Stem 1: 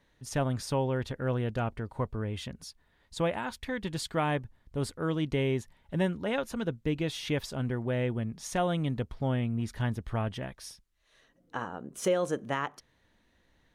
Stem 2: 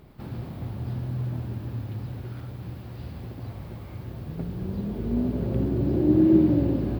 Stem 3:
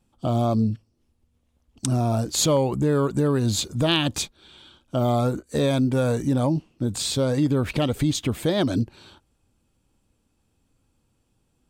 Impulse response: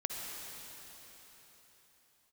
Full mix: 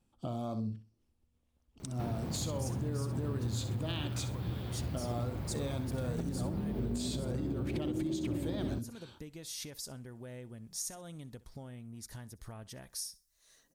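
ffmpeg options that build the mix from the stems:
-filter_complex "[0:a]acompressor=threshold=0.0141:ratio=8,aexciter=amount=6.1:drive=5.4:freq=4400,adelay=2350,volume=0.473,asplit=2[s0][s1];[s1]volume=0.0891[s2];[1:a]acompressor=threshold=0.0282:ratio=6,adelay=1800,volume=1.06[s3];[2:a]volume=0.422,asplit=2[s4][s5];[s5]volume=0.126[s6];[s0][s4]amix=inputs=2:normalize=0,acompressor=threshold=0.0126:ratio=2.5,volume=1[s7];[s2][s6]amix=inputs=2:normalize=0,aecho=0:1:64|128|192|256:1|0.23|0.0529|0.0122[s8];[s3][s7][s8]amix=inputs=3:normalize=0,alimiter=level_in=1.26:limit=0.0631:level=0:latency=1:release=171,volume=0.794"

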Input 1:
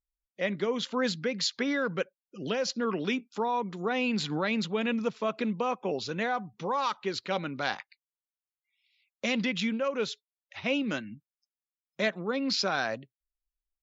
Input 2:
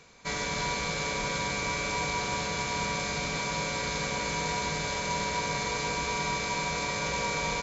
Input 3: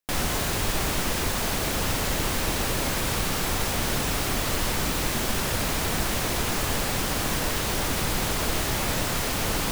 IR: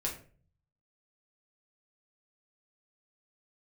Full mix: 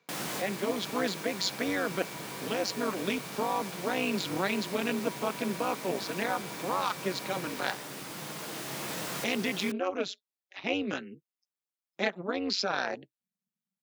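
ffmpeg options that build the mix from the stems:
-filter_complex "[0:a]tremolo=f=190:d=0.974,volume=1.33,asplit=2[s0][s1];[1:a]lowpass=4500,volume=0.178[s2];[2:a]volume=0.282,asplit=2[s3][s4];[s4]volume=0.422[s5];[s1]apad=whole_len=428514[s6];[s3][s6]sidechaincompress=threshold=0.0112:ratio=8:attack=5.4:release=1090[s7];[3:a]atrim=start_sample=2205[s8];[s5][s8]afir=irnorm=-1:irlink=0[s9];[s0][s2][s7][s9]amix=inputs=4:normalize=0,highpass=f=150:w=0.5412,highpass=f=150:w=1.3066"

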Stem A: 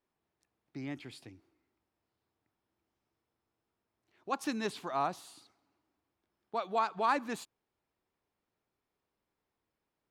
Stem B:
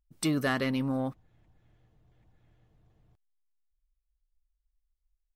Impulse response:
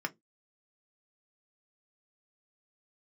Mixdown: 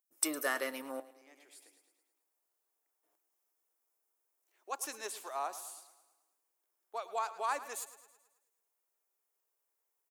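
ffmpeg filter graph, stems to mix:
-filter_complex "[0:a]adelay=400,volume=0.562,asplit=2[s0][s1];[s1]volume=0.178[s2];[1:a]lowshelf=f=460:g=5,volume=0.335,asplit=3[s3][s4][s5];[s3]atrim=end=1,asetpts=PTS-STARTPTS,afade=t=out:st=0.996:d=0.004:c=hsin[s6];[s4]atrim=start=1:end=3.03,asetpts=PTS-STARTPTS,volume=0[s7];[s5]atrim=start=3.03,asetpts=PTS-STARTPTS,afade=t=in:d=0.004:c=hsin[s8];[s6][s7][s8]concat=n=3:v=0:a=1,asplit=4[s9][s10][s11][s12];[s10]volume=0.596[s13];[s11]volume=0.2[s14];[s12]apad=whole_len=463307[s15];[s0][s15]sidechaincompress=threshold=0.00398:ratio=4:attack=16:release=980[s16];[2:a]atrim=start_sample=2205[s17];[s13][s17]afir=irnorm=-1:irlink=0[s18];[s2][s14]amix=inputs=2:normalize=0,aecho=0:1:108|216|324|432|540|648|756|864:1|0.53|0.281|0.149|0.0789|0.0418|0.0222|0.0117[s19];[s16][s9][s18][s19]amix=inputs=4:normalize=0,highpass=f=420:w=0.5412,highpass=f=420:w=1.3066,aexciter=amount=5.7:drive=3.9:freq=5900"

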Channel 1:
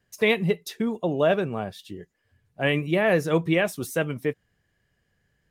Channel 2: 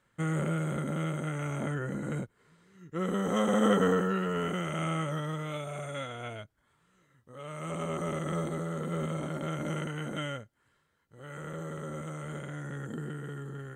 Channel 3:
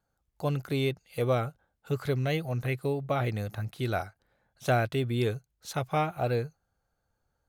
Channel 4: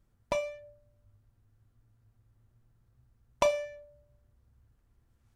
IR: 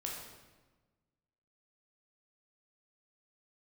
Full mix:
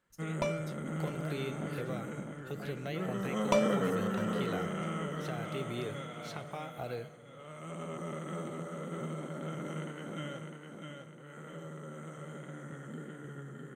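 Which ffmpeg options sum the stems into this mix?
-filter_complex "[0:a]acompressor=threshold=0.0398:ratio=6,volume=0.126[s0];[1:a]lowshelf=f=130:t=q:w=1.5:g=-8,flanger=delay=1.7:depth=7.9:regen=-80:speed=1.9:shape=triangular,volume=0.708,asplit=2[s1][s2];[s2]volume=0.562[s3];[2:a]acrossover=split=270|4200[s4][s5][s6];[s4]acompressor=threshold=0.00631:ratio=4[s7];[s5]acompressor=threshold=0.0158:ratio=4[s8];[s6]acompressor=threshold=0.00141:ratio=4[s9];[s7][s8][s9]amix=inputs=3:normalize=0,alimiter=level_in=1.26:limit=0.0631:level=0:latency=1:release=359,volume=0.794,adelay=600,volume=0.631,asplit=2[s10][s11];[s11]volume=0.355[s12];[3:a]adelay=100,volume=0.75,asplit=2[s13][s14];[s14]volume=0.112[s15];[4:a]atrim=start_sample=2205[s16];[s12][s16]afir=irnorm=-1:irlink=0[s17];[s3][s15]amix=inputs=2:normalize=0,aecho=0:1:654|1308|1962|2616|3270|3924:1|0.42|0.176|0.0741|0.0311|0.0131[s18];[s0][s1][s10][s13][s17][s18]amix=inputs=6:normalize=0"

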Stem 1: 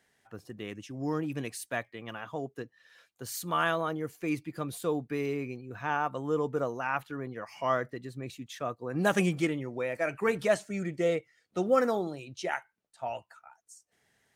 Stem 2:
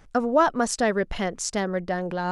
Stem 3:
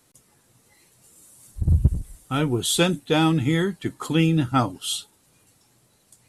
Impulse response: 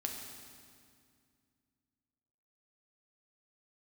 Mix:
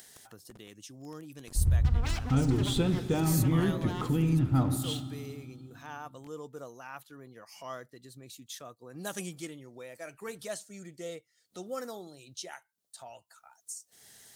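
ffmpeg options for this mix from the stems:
-filter_complex "[0:a]acompressor=mode=upward:threshold=0.0282:ratio=2.5,aexciter=amount=3.6:drive=6.3:freq=3400,volume=0.224,asplit=2[s0][s1];[1:a]aeval=exprs='0.0562*(abs(mod(val(0)/0.0562+3,4)-2)-1)':c=same,adelay=1700,volume=0.316,asplit=2[s2][s3];[s3]volume=0.299[s4];[2:a]aemphasis=mode=reproduction:type=riaa,acompressor=threshold=0.141:ratio=6,aeval=exprs='sgn(val(0))*max(abs(val(0))-0.00668,0)':c=same,volume=0.708,asplit=2[s5][s6];[s6]volume=0.376[s7];[s1]apad=whole_len=177025[s8];[s2][s8]sidechaingate=range=0.0224:threshold=0.002:ratio=16:detection=peak[s9];[s9][s5]amix=inputs=2:normalize=0,acompressor=mode=upward:threshold=0.0112:ratio=2.5,alimiter=level_in=1.12:limit=0.0631:level=0:latency=1:release=44,volume=0.891,volume=1[s10];[3:a]atrim=start_sample=2205[s11];[s4][s7]amix=inputs=2:normalize=0[s12];[s12][s11]afir=irnorm=-1:irlink=0[s13];[s0][s10][s13]amix=inputs=3:normalize=0"

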